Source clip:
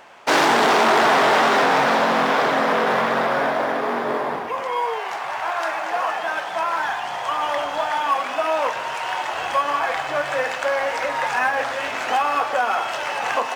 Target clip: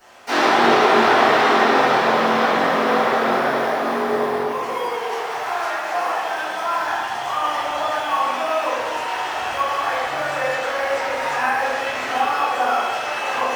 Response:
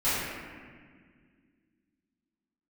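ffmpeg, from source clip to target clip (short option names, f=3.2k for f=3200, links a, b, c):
-filter_complex "[0:a]acrossover=split=4100[a][b];[b]acompressor=threshold=-47dB:ratio=6[c];[a][c]amix=inputs=2:normalize=0,aexciter=amount=3.5:drive=3.2:freq=4.3k[d];[1:a]atrim=start_sample=2205,asetrate=61740,aresample=44100[e];[d][e]afir=irnorm=-1:irlink=0,volume=-9dB"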